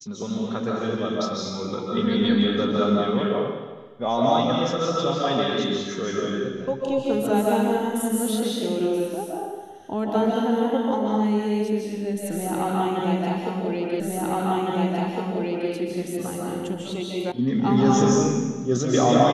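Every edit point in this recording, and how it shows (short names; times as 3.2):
14 repeat of the last 1.71 s
17.32 sound cut off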